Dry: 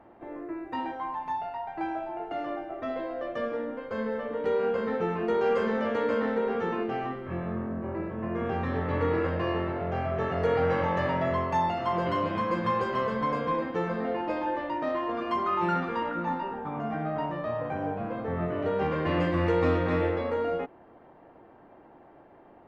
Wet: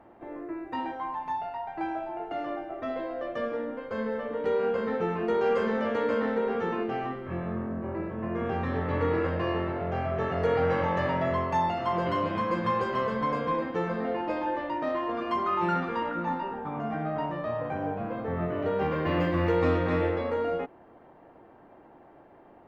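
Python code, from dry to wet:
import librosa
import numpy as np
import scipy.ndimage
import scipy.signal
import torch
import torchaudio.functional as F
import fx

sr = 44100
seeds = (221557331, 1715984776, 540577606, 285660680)

y = fx.resample_linear(x, sr, factor=2, at=(17.78, 19.6))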